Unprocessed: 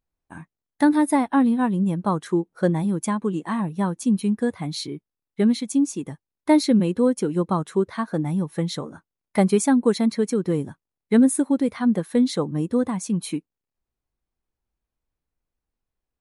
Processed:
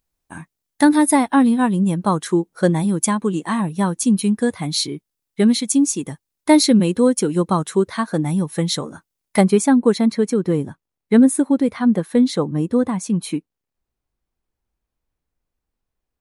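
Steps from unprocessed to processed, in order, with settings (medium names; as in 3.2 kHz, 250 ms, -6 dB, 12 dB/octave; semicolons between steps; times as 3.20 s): treble shelf 3.3 kHz +9.5 dB, from 9.41 s -2 dB; trim +4 dB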